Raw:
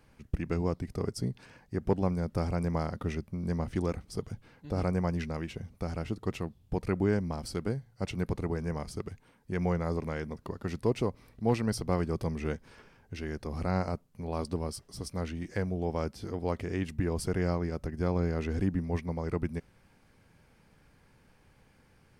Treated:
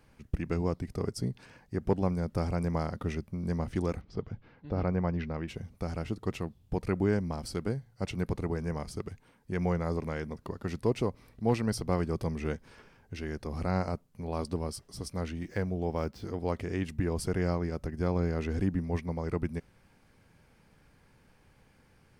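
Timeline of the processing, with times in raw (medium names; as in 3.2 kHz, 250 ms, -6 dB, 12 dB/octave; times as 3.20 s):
4.01–5.48 s: Gaussian low-pass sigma 2.1 samples
15.42–16.25 s: median filter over 5 samples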